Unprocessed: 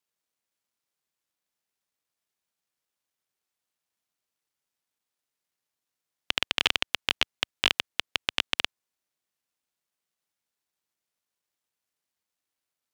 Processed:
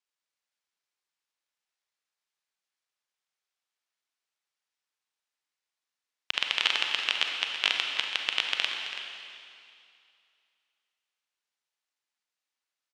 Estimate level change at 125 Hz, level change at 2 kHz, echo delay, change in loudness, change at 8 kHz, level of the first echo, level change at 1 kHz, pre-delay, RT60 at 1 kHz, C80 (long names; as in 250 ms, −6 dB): below −15 dB, +0.5 dB, 331 ms, −0.5 dB, −2.5 dB, −11.0 dB, −1.0 dB, 31 ms, 2.5 s, 3.0 dB